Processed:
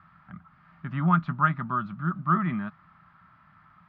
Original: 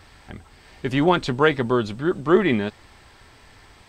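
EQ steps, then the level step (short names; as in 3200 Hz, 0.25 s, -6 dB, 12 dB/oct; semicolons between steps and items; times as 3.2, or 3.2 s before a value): double band-pass 460 Hz, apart 2.9 oct; air absorption 210 m; bell 620 Hz +8 dB 0.29 oct; +6.5 dB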